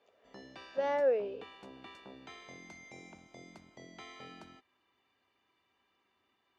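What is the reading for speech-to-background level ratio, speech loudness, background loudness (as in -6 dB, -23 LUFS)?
19.5 dB, -32.5 LUFS, -52.0 LUFS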